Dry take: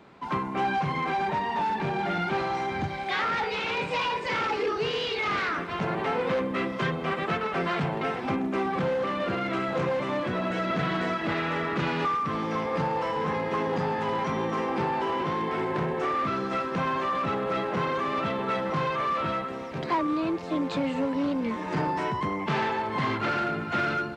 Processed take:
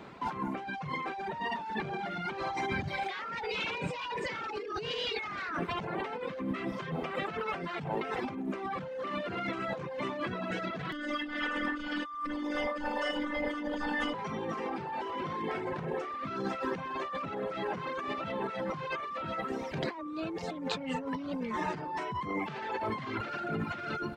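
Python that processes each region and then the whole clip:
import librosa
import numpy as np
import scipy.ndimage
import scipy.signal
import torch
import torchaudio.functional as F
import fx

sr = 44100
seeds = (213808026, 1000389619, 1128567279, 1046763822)

y = fx.chain(x, sr, fx.robotise(hz=296.0),
    fx.comb(ms=4.0, depth=0.98), at=(10.92, 14.14))
y = fx.dereverb_blind(y, sr, rt60_s=1.3)
y = fx.over_compress(y, sr, threshold_db=-36.0, ratio=-1.0)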